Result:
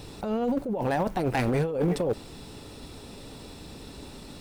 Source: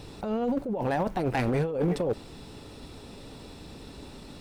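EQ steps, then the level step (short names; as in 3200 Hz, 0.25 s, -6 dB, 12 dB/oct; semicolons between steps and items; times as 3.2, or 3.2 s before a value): high shelf 7000 Hz +6.5 dB; +1.0 dB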